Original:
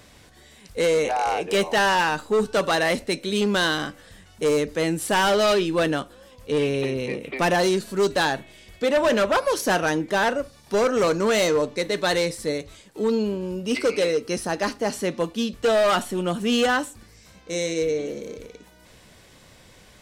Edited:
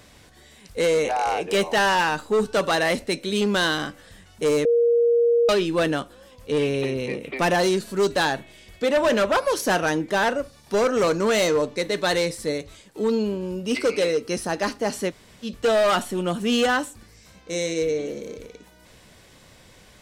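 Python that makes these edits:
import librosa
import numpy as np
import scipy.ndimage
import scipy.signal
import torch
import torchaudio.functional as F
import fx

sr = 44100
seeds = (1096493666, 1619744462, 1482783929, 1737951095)

y = fx.edit(x, sr, fx.bleep(start_s=4.65, length_s=0.84, hz=471.0, db=-15.0),
    fx.room_tone_fill(start_s=15.1, length_s=0.35, crossfade_s=0.06), tone=tone)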